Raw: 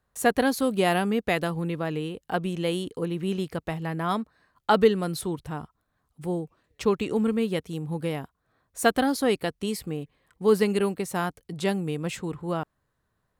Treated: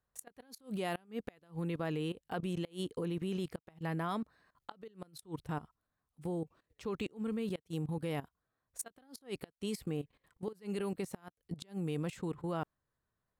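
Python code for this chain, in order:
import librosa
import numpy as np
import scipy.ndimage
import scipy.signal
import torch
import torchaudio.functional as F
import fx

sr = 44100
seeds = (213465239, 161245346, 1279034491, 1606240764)

y = fx.level_steps(x, sr, step_db=17)
y = fx.gate_flip(y, sr, shuts_db=-24.0, range_db=-28)
y = F.gain(torch.from_numpy(y), -1.5).numpy()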